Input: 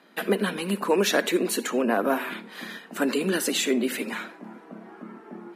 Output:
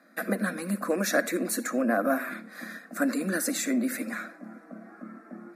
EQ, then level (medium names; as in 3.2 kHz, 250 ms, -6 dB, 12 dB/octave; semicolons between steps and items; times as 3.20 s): static phaser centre 610 Hz, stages 8; 0.0 dB